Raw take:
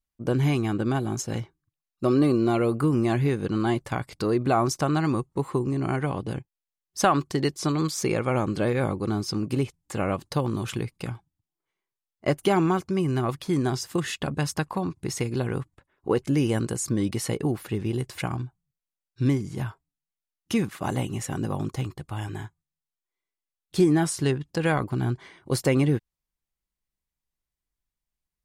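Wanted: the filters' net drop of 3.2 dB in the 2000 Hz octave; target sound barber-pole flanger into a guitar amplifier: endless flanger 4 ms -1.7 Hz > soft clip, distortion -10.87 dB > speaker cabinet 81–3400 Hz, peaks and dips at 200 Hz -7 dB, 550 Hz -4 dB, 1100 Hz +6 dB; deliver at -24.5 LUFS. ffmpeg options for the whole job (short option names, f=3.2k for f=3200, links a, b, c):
-filter_complex "[0:a]equalizer=f=2k:t=o:g=-5,asplit=2[a][b];[b]adelay=4,afreqshift=-1.7[c];[a][c]amix=inputs=2:normalize=1,asoftclip=threshold=-24dB,highpass=81,equalizer=f=200:t=q:w=4:g=-7,equalizer=f=550:t=q:w=4:g=-4,equalizer=f=1.1k:t=q:w=4:g=6,lowpass=f=3.4k:w=0.5412,lowpass=f=3.4k:w=1.3066,volume=9.5dB"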